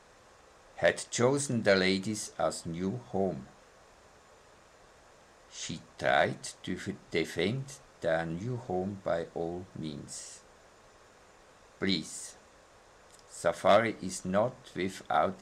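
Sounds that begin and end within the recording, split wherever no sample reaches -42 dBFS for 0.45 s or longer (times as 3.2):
0.78–3.43
5.54–10.38
11.81–12.31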